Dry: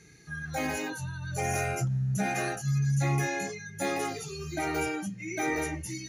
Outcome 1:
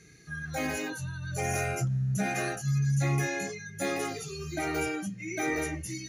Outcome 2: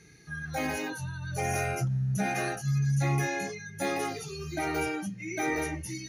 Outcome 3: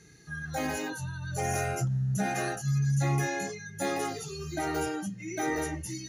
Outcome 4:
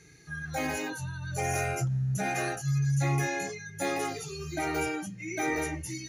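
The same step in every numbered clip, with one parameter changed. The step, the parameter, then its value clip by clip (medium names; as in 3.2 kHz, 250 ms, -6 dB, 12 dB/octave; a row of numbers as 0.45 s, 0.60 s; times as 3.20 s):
band-stop, frequency: 880 Hz, 7.3 kHz, 2.3 kHz, 210 Hz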